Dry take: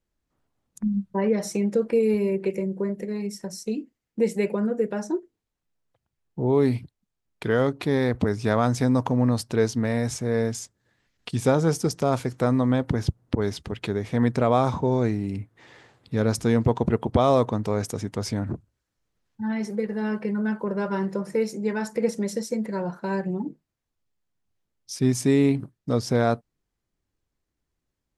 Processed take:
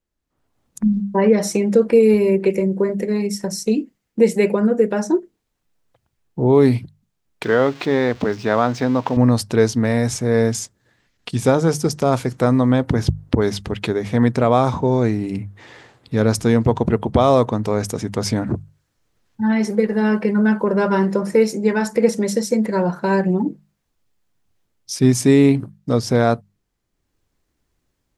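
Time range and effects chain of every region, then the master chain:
7.43–9.17 s: zero-crossing glitches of -25 dBFS + high-pass 350 Hz 6 dB/octave + distance through air 190 m
whole clip: level rider; hum notches 50/100/150/200 Hz; trim -1 dB

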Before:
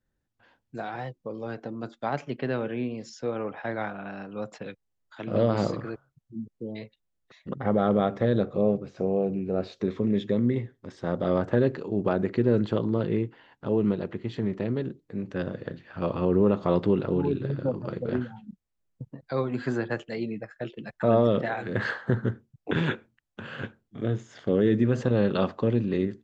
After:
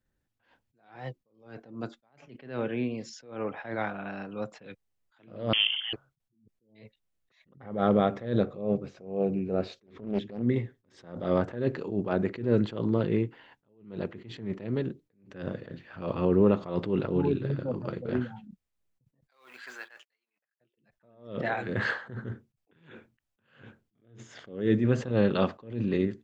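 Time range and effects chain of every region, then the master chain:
5.53–5.93 s: dynamic bell 1.1 kHz, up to -7 dB, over -43 dBFS, Q 0.95 + frequency inversion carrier 3.3 kHz
9.86–10.43 s: treble shelf 3.5 kHz -6.5 dB + transient shaper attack -10 dB, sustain -2 dB + loudspeaker Doppler distortion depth 0.39 ms
19.30–20.58 s: companding laws mixed up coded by A + high-pass 1.3 kHz + gate -59 dBFS, range -51 dB
whole clip: peaking EQ 2.4 kHz +2.5 dB 0.77 oct; attacks held to a fixed rise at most 120 dB/s

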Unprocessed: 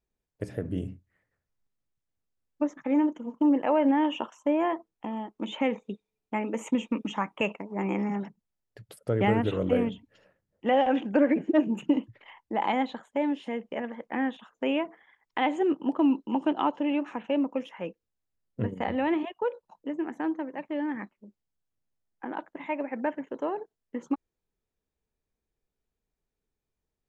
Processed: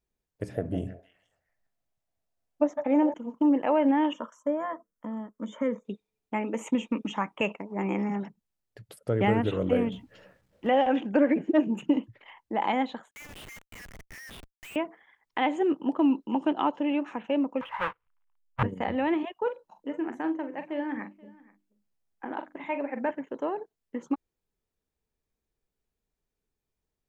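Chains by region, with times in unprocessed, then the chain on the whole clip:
0.55–3.14 s: peaking EQ 680 Hz +12 dB 0.46 oct + repeats whose band climbs or falls 159 ms, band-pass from 770 Hz, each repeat 1.4 oct, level -5 dB
4.13–5.85 s: Butterworth band-stop 4.2 kHz, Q 2.9 + static phaser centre 530 Hz, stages 8
9.92–10.67 s: companding laws mixed up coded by mu + treble shelf 5.5 kHz -8 dB + doubling 16 ms -7.5 dB
13.11–14.76 s: steep high-pass 1.8 kHz 48 dB/octave + Schmitt trigger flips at -51 dBFS
17.61–18.63 s: square wave that keeps the level + FFT filter 130 Hz 0 dB, 240 Hz -17 dB, 450 Hz -6 dB, 700 Hz +2 dB, 990 Hz +13 dB, 3 kHz +1 dB, 4.8 kHz -21 dB, 8.1 kHz -26 dB
19.37–23.11 s: hum notches 50/100/150/200/250/300/350 Hz + doubling 43 ms -9.5 dB + delay 480 ms -23 dB
whole clip: none

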